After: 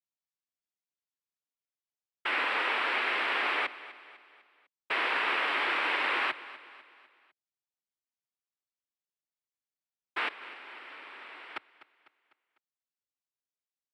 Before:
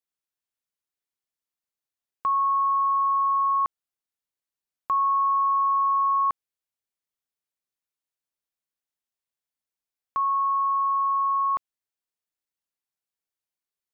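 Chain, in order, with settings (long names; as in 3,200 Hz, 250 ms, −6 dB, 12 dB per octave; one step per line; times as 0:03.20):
0:10.28–0:11.56: tuned comb filter 240 Hz, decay 0.18 s, harmonics odd, mix 90%
cochlear-implant simulation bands 4
repeating echo 250 ms, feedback 48%, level −17 dB
level −7.5 dB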